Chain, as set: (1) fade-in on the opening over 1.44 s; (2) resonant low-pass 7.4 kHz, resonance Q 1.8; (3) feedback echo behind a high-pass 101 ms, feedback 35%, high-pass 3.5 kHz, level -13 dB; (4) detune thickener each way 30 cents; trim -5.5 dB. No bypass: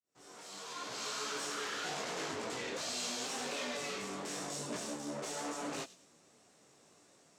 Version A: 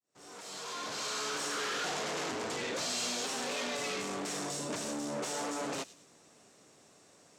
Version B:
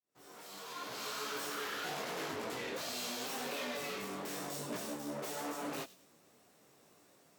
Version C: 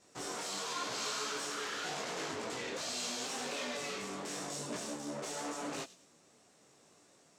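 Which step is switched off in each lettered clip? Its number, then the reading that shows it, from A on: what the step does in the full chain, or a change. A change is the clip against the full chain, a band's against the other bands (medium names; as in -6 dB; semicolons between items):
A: 4, crest factor change -2.0 dB; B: 2, 8 kHz band -4.0 dB; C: 1, momentary loudness spread change -3 LU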